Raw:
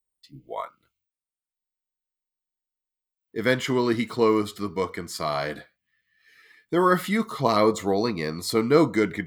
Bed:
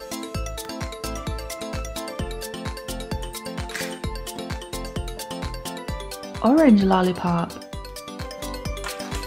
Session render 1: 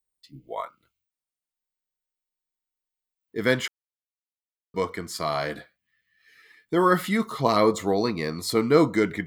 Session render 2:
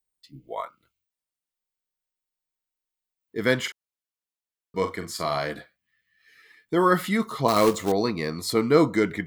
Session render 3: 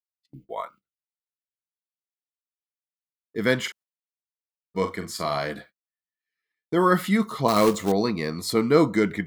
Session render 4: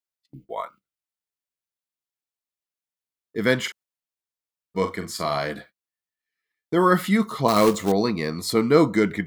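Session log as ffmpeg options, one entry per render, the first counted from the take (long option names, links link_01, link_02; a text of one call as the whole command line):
ffmpeg -i in.wav -filter_complex "[0:a]asplit=3[link_01][link_02][link_03];[link_01]atrim=end=3.68,asetpts=PTS-STARTPTS,afade=type=out:start_time=3.676:duration=0.004:curve=hsin[link_04];[link_02]atrim=start=3.68:end=4.74,asetpts=PTS-STARTPTS,volume=0[link_05];[link_03]atrim=start=4.74,asetpts=PTS-STARTPTS,afade=type=in:duration=0.004:curve=hsin[link_06];[link_04][link_05][link_06]concat=n=3:v=0:a=1" out.wav
ffmpeg -i in.wav -filter_complex "[0:a]asettb=1/sr,asplit=3[link_01][link_02][link_03];[link_01]atrim=end=3.614[link_04];[link_02]atrim=start=3.61:end=5.38,asetpts=PTS-STARTPTS,afade=type=in:duration=0.004:curve=qsin,afade=type=out:start_time=1.766:duration=0.004:curve=qsin,asplit=2[link_05][link_06];[link_06]adelay=42,volume=-8.5dB[link_07];[link_05][link_07]amix=inputs=2:normalize=0,atrim=end_sample=78057[link_08];[link_03]atrim=start=5.376[link_09];[link_04][link_08]acrossfade=duration=0.004:curve1=hsin:curve2=qsin[link_10];[link_10][link_09]acrossfade=duration=0.004:curve1=qsin:curve2=hsin,asettb=1/sr,asplit=3[link_11][link_12][link_13];[link_11]atrim=end=7.484[link_14];[link_12]atrim=start=7.48:end=7.92,asetpts=PTS-STARTPTS,afade=type=in:duration=0.004:curve=qsin,afade=type=out:start_time=0.436:duration=0.004:curve=qsin,acrusher=bits=3:mode=log:mix=0:aa=0.000001[link_15];[link_13]atrim=start=7.916[link_16];[link_14][link_15]acrossfade=duration=0.004:curve1=hsin:curve2=qsin[link_17];[link_17][link_16]acrossfade=duration=0.004:curve1=qsin:curve2=hsin" out.wav
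ffmpeg -i in.wav -af "agate=range=-30dB:threshold=-48dB:ratio=16:detection=peak,equalizer=frequency=200:width=5.4:gain=5.5" out.wav
ffmpeg -i in.wav -af "volume=1.5dB" out.wav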